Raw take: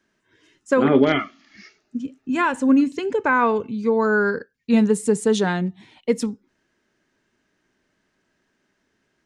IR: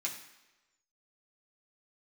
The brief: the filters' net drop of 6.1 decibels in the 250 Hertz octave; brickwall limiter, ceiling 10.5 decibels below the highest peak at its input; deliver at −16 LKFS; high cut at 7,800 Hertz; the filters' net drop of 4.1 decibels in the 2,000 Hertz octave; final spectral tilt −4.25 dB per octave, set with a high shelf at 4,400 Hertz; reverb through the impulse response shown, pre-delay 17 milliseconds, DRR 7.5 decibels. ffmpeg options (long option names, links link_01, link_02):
-filter_complex "[0:a]lowpass=7800,equalizer=frequency=250:width_type=o:gain=-7,equalizer=frequency=2000:width_type=o:gain=-7.5,highshelf=frequency=4400:gain=8,alimiter=limit=-17.5dB:level=0:latency=1,asplit=2[link_01][link_02];[1:a]atrim=start_sample=2205,adelay=17[link_03];[link_02][link_03]afir=irnorm=-1:irlink=0,volume=-9.5dB[link_04];[link_01][link_04]amix=inputs=2:normalize=0,volume=11.5dB"